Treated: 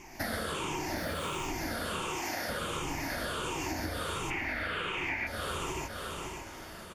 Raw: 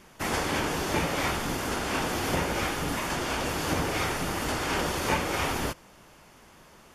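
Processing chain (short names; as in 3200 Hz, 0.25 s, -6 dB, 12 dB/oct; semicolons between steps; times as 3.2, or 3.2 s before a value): moving spectral ripple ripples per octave 0.71, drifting -1.4 Hz, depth 15 dB; 2.02–2.49 HPF 630 Hz 6 dB/oct; feedback echo 0.563 s, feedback 29%, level -16 dB; reverb, pre-delay 3 ms, DRR -0.5 dB; 0.96–1.46 added noise blue -46 dBFS; 4.3–5.27 EQ curve 970 Hz 0 dB, 2300 Hz +13 dB, 5500 Hz -11 dB; compressor 10:1, threshold -32 dBFS, peak gain reduction 20 dB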